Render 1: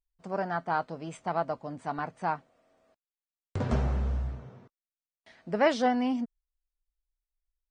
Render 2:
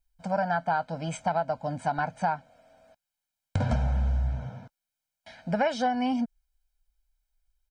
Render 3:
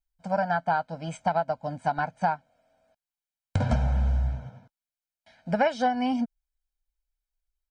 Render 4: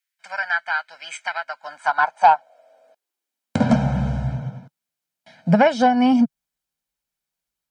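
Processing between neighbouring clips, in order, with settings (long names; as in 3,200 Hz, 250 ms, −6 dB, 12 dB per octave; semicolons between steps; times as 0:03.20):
comb filter 1.3 ms, depth 98%; downward compressor 5 to 1, threshold −29 dBFS, peak gain reduction 12.5 dB; level +5.5 dB
expander for the loud parts 1.5 to 1, over −46 dBFS; level +3 dB
high-pass filter sweep 1,900 Hz → 150 Hz, 0:01.40–0:03.98; harmonic generator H 5 −23 dB, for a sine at −6.5 dBFS; level +5.5 dB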